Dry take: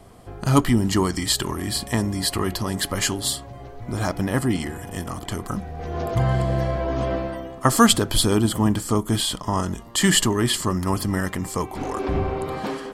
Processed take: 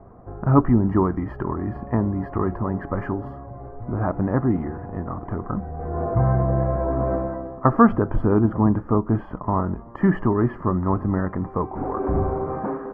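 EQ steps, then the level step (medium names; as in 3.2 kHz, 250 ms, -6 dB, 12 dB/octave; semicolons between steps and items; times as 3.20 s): inverse Chebyshev low-pass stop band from 3.5 kHz, stop band 50 dB; +1.5 dB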